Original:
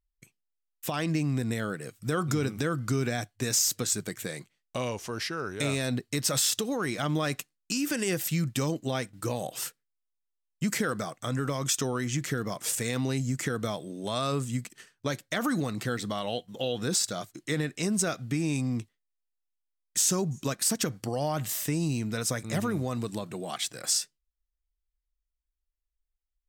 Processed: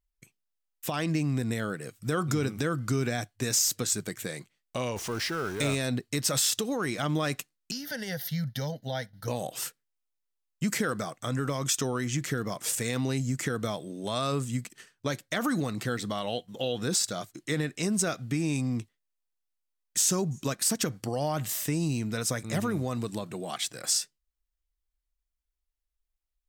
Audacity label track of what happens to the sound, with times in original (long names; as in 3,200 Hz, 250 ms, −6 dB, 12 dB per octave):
4.960000	5.750000	converter with a step at zero of −37 dBFS
7.710000	9.280000	phaser with its sweep stopped centre 1,700 Hz, stages 8